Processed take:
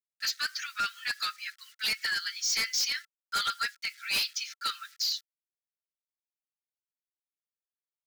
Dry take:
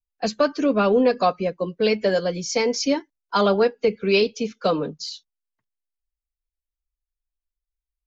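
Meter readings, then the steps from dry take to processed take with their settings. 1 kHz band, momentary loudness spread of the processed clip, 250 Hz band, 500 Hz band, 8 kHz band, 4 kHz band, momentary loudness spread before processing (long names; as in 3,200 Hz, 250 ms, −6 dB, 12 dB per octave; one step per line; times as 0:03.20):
−11.5 dB, 7 LU, −35.5 dB, −38.0 dB, can't be measured, +1.0 dB, 8 LU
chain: bit reduction 9 bits
Chebyshev high-pass with heavy ripple 1,300 Hz, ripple 6 dB
hard clipping −31.5 dBFS, distortion −7 dB
level +6 dB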